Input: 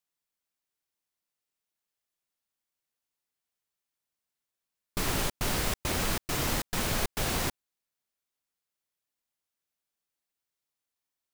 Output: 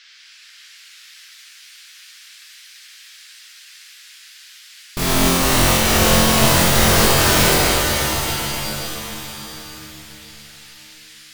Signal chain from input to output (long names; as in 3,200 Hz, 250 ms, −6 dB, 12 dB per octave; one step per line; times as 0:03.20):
flutter between parallel walls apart 3.9 metres, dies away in 1.3 s
noise in a band 1,500–5,400 Hz −54 dBFS
reverb with rising layers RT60 3.6 s, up +7 semitones, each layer −2 dB, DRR 0 dB
level +5.5 dB